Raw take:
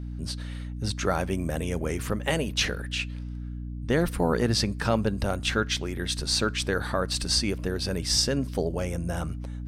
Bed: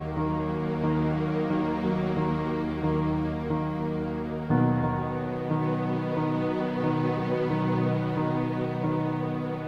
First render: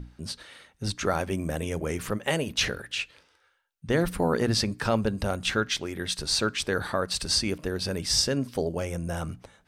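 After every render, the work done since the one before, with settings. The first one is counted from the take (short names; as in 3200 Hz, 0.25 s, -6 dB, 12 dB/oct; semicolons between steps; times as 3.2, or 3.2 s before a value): notches 60/120/180/240/300 Hz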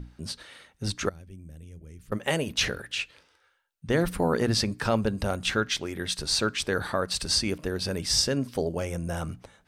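1.09–2.12 passive tone stack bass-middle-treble 10-0-1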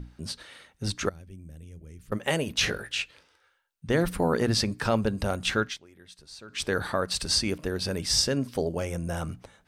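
2.61–3.02 doubler 19 ms -4.5 dB; 5.63–6.63 dip -20 dB, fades 0.15 s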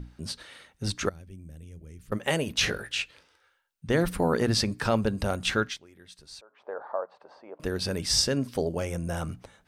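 6.41–7.6 Butterworth band-pass 740 Hz, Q 1.5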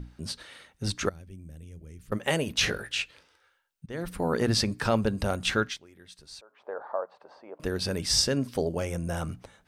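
3.86–4.47 fade in, from -19 dB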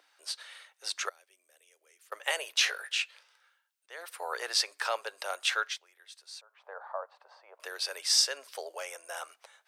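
Bessel high-pass 920 Hz, order 8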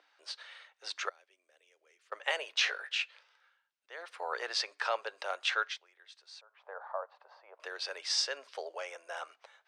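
air absorption 130 m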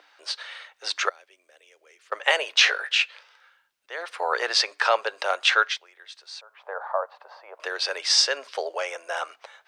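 gain +11.5 dB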